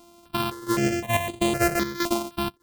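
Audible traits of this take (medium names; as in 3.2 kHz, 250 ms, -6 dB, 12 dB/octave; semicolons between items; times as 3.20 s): a buzz of ramps at a fixed pitch in blocks of 128 samples; chopped level 1.5 Hz, depth 65%, duty 75%; notches that jump at a steady rate 3.9 Hz 480–5400 Hz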